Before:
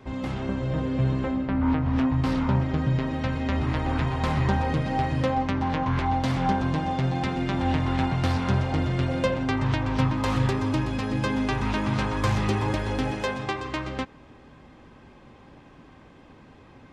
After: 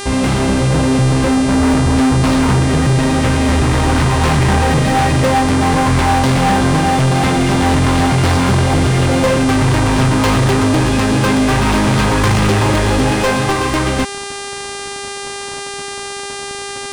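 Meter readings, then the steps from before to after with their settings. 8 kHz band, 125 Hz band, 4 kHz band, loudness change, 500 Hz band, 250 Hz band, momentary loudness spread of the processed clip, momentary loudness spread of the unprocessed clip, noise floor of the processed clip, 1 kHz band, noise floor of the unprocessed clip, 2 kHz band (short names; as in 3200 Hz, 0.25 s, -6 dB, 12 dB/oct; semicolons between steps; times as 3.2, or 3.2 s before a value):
+24.5 dB, +11.5 dB, +16.5 dB, +12.5 dB, +13.5 dB, +12.0 dB, 11 LU, 4 LU, -26 dBFS, +13.0 dB, -51 dBFS, +14.5 dB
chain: sample leveller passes 5; buzz 400 Hz, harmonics 26, -26 dBFS -3 dB/oct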